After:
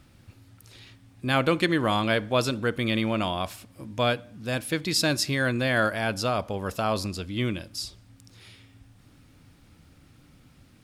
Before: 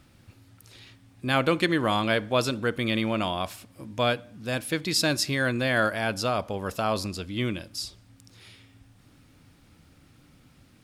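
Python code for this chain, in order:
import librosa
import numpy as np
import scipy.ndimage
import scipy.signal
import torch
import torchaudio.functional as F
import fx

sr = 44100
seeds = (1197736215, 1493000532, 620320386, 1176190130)

y = fx.low_shelf(x, sr, hz=120.0, db=3.5)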